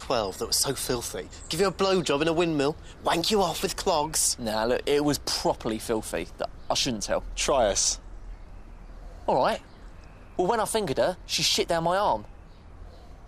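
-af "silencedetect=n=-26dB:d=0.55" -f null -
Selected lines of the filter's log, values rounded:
silence_start: 7.94
silence_end: 9.28 | silence_duration: 1.34
silence_start: 9.56
silence_end: 10.39 | silence_duration: 0.83
silence_start: 12.16
silence_end: 13.28 | silence_duration: 1.11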